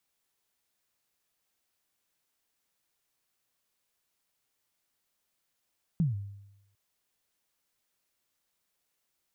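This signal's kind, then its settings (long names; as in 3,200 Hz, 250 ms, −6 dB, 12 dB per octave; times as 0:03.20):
synth kick length 0.75 s, from 180 Hz, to 100 Hz, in 149 ms, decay 0.90 s, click off, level −21 dB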